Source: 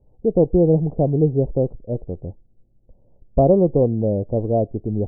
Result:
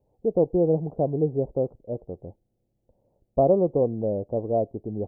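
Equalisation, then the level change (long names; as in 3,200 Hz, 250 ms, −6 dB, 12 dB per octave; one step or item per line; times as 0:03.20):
high-pass filter 75 Hz 6 dB per octave
low-shelf EQ 410 Hz −10 dB
0.0 dB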